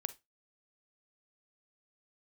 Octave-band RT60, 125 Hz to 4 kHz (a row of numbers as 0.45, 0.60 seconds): 0.20, 0.20, 0.20, 0.20, 0.20, 0.20 seconds